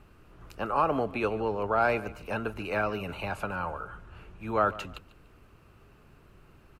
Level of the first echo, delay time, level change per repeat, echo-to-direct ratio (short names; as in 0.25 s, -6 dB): -18.0 dB, 0.146 s, -11.0 dB, -17.5 dB